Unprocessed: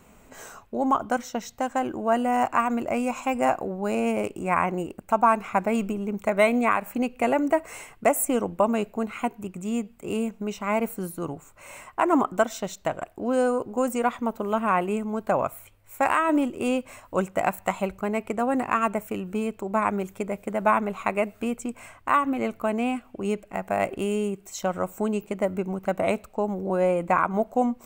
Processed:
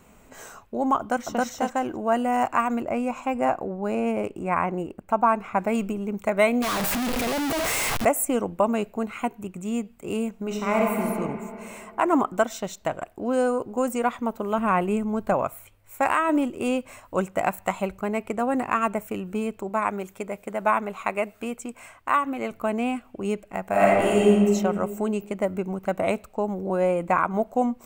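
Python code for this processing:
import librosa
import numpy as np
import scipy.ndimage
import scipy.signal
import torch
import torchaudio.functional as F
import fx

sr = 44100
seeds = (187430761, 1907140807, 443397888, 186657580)

y = fx.echo_throw(x, sr, start_s=0.99, length_s=0.43, ms=270, feedback_pct=10, wet_db=0.0)
y = fx.high_shelf(y, sr, hz=3000.0, db=-9.0, at=(2.81, 5.59))
y = fx.clip_1bit(y, sr, at=(6.62, 8.05))
y = fx.notch(y, sr, hz=4900.0, q=12.0, at=(9.19, 9.75))
y = fx.reverb_throw(y, sr, start_s=10.34, length_s=0.69, rt60_s=2.5, drr_db=-1.0)
y = fx.low_shelf(y, sr, hz=140.0, db=11.0, at=(14.58, 15.34))
y = fx.low_shelf(y, sr, hz=300.0, db=-7.0, at=(19.69, 22.51))
y = fx.reverb_throw(y, sr, start_s=23.68, length_s=0.65, rt60_s=1.8, drr_db=-7.0)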